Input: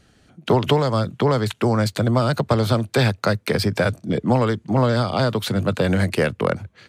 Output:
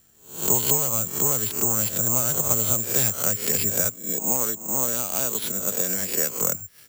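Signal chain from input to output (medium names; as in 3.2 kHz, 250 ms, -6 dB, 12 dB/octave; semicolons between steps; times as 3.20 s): reverse spectral sustain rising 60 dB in 0.48 s; 3.89–6.41 s: high-pass 200 Hz 12 dB/octave; careless resampling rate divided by 6×, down none, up zero stuff; trim -12.5 dB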